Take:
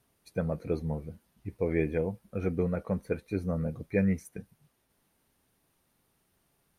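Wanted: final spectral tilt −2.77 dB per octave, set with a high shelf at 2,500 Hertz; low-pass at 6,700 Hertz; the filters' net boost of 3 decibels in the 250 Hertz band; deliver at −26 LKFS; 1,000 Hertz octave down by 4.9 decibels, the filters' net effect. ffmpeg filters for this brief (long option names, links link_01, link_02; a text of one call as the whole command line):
ffmpeg -i in.wav -af "lowpass=6700,equalizer=frequency=250:width_type=o:gain=5,equalizer=frequency=1000:width_type=o:gain=-6.5,highshelf=frequency=2500:gain=-7,volume=4.5dB" out.wav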